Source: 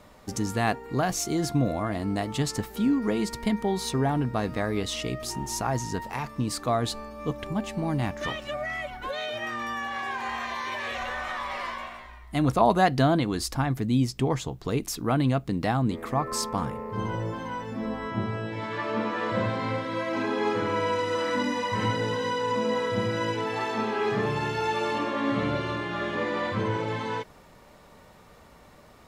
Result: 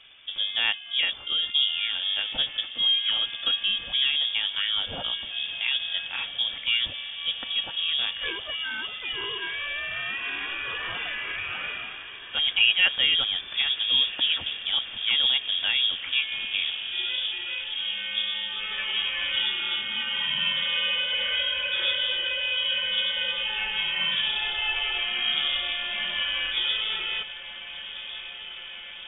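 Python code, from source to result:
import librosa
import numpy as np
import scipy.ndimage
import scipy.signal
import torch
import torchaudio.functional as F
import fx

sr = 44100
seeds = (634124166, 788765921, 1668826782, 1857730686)

y = fx.highpass(x, sr, hz=190.0, slope=12, at=(11.14, 13.15))
y = fx.echo_diffused(y, sr, ms=1436, feedback_pct=75, wet_db=-14)
y = fx.freq_invert(y, sr, carrier_hz=3500)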